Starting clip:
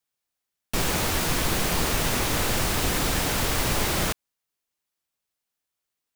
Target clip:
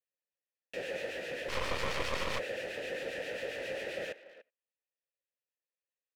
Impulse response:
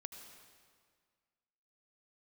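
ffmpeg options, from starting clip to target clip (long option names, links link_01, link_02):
-filter_complex "[0:a]asplit=3[link_01][link_02][link_03];[link_01]bandpass=frequency=530:width_type=q:width=8,volume=0dB[link_04];[link_02]bandpass=frequency=1840:width_type=q:width=8,volume=-6dB[link_05];[link_03]bandpass=frequency=2480:width_type=q:width=8,volume=-9dB[link_06];[link_04][link_05][link_06]amix=inputs=3:normalize=0,asplit=2[link_07][link_08];[link_08]adelay=290,highpass=300,lowpass=3400,asoftclip=type=hard:threshold=-35dB,volume=-15dB[link_09];[link_07][link_09]amix=inputs=2:normalize=0,acrossover=split=1600[link_10][link_11];[link_10]aeval=exprs='val(0)*(1-0.5/2+0.5/2*cos(2*PI*7.5*n/s))':channel_layout=same[link_12];[link_11]aeval=exprs='val(0)*(1-0.5/2-0.5/2*cos(2*PI*7.5*n/s))':channel_layout=same[link_13];[link_12][link_13]amix=inputs=2:normalize=0,asplit=2[link_14][link_15];[1:a]atrim=start_sample=2205,atrim=end_sample=3969[link_16];[link_15][link_16]afir=irnorm=-1:irlink=0,volume=-3.5dB[link_17];[link_14][link_17]amix=inputs=2:normalize=0,asplit=3[link_18][link_19][link_20];[link_18]afade=type=out:start_time=1.48:duration=0.02[link_21];[link_19]aeval=exprs='0.0596*(cos(1*acos(clip(val(0)/0.0596,-1,1)))-cos(1*PI/2))+0.0237*(cos(6*acos(clip(val(0)/0.0596,-1,1)))-cos(6*PI/2))':channel_layout=same,afade=type=in:start_time=1.48:duration=0.02,afade=type=out:start_time=2.38:duration=0.02[link_22];[link_20]afade=type=in:start_time=2.38:duration=0.02[link_23];[link_21][link_22][link_23]amix=inputs=3:normalize=0"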